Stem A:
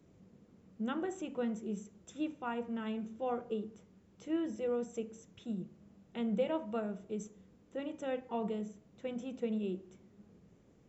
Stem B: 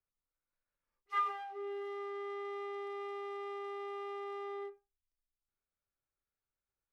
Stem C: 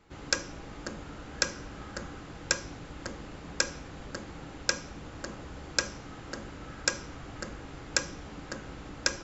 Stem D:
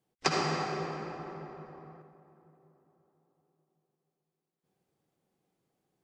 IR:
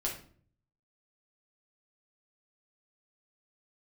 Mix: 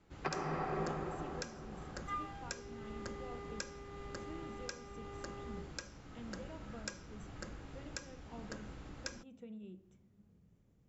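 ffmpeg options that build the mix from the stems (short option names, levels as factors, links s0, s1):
-filter_complex "[0:a]asubboost=boost=3:cutoff=180,acompressor=threshold=0.0126:ratio=3,volume=0.316[s0];[1:a]adelay=950,volume=0.398[s1];[2:a]lowshelf=f=170:g=5.5,volume=0.355[s2];[3:a]lowpass=1800,volume=0.794[s3];[s0][s1][s2][s3]amix=inputs=4:normalize=0,alimiter=limit=0.0708:level=0:latency=1:release=459"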